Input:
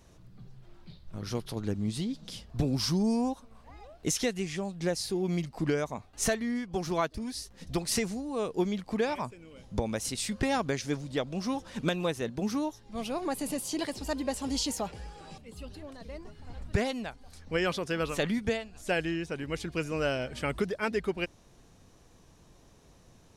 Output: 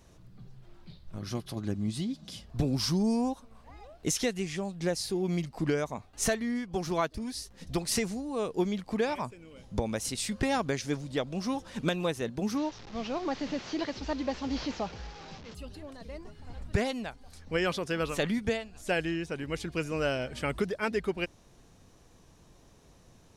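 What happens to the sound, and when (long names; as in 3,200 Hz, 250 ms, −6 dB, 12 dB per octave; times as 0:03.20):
0:01.19–0:02.44: notch comb filter 460 Hz
0:12.57–0:15.55: linear delta modulator 32 kbit/s, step −41 dBFS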